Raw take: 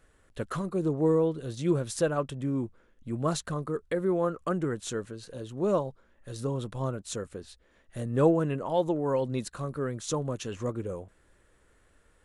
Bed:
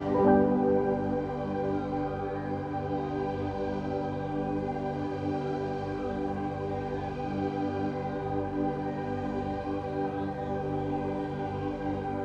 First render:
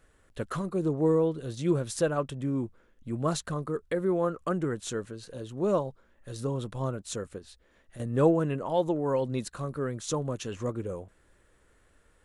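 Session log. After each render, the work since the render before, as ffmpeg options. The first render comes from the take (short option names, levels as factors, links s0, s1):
-filter_complex "[0:a]asettb=1/sr,asplit=3[s0][s1][s2];[s0]atrim=end=7.384[s3];[s1]atrim=start=7.38:end=8,asetpts=PTS-STARTPTS,afade=t=in:d=0.004:c=qsin,afade=t=out:st=0.616:d=0.004:c=qsin,acompressor=threshold=0.00447:ratio=2:attack=3.2:release=140:knee=1:detection=peak[s4];[s2]atrim=start=7.996[s5];[s3][s4]acrossfade=d=0.004:c1=hsin:c2=qsin[s6];[s6][s5]acrossfade=d=0.004:c1=qsin:c2=hsin"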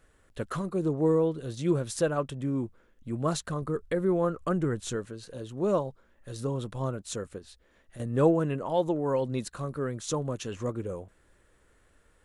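-filter_complex "[0:a]asettb=1/sr,asplit=3[s0][s1][s2];[s0]atrim=end=3.624[s3];[s1]atrim=start=3.62:end=4.96,asetpts=PTS-STARTPTS,afade=t=in:d=0.004:c=qsin,afade=t=out:st=1.336:d=0.004:c=qsin,lowshelf=f=110:g=10[s4];[s2]atrim=start=4.956[s5];[s3][s4]acrossfade=d=0.004:c1=hsin:c2=qsin[s6];[s6][s5]acrossfade=d=0.004:c1=qsin:c2=hsin"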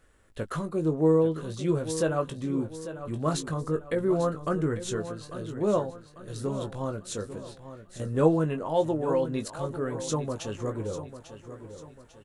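-filter_complex "[0:a]asplit=2[s0][s1];[s1]adelay=19,volume=0.422[s2];[s0][s2]amix=inputs=2:normalize=0,aecho=1:1:846|1692|2538|3384:0.251|0.105|0.0443|0.0186"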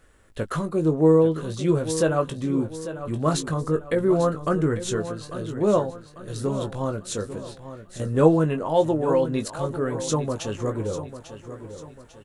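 -af "volume=1.78"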